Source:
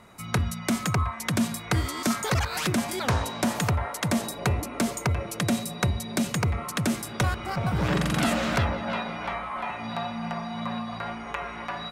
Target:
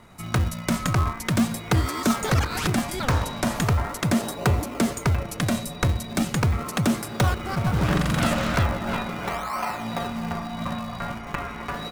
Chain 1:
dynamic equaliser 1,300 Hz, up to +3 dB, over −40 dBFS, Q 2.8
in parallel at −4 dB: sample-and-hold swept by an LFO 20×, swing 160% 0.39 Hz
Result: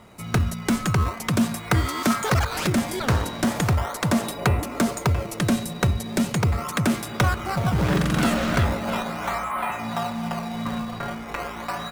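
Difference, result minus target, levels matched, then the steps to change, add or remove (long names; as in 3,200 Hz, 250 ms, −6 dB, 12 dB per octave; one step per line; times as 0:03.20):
sample-and-hold swept by an LFO: distortion −7 dB
change: sample-and-hold swept by an LFO 62×, swing 160% 0.39 Hz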